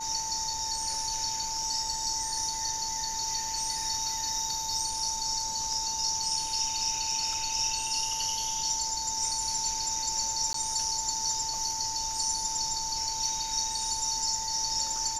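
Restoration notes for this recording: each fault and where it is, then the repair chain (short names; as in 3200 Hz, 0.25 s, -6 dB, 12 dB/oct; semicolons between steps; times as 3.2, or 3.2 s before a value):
tone 890 Hz -36 dBFS
10.53–10.54 gap 13 ms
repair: notch 890 Hz, Q 30; interpolate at 10.53, 13 ms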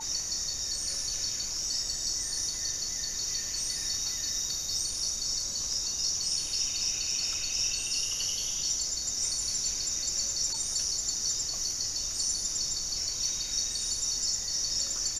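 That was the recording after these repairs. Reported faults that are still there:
none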